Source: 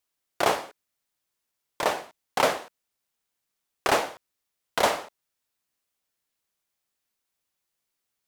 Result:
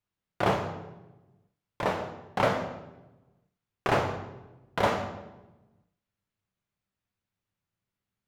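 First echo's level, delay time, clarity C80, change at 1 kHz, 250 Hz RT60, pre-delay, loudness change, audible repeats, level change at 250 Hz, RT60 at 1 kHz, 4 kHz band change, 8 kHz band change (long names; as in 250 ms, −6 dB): no echo audible, no echo audible, 10.0 dB, −2.5 dB, 1.4 s, 3 ms, −3.0 dB, no echo audible, +3.5 dB, 0.95 s, −7.5 dB, −13.5 dB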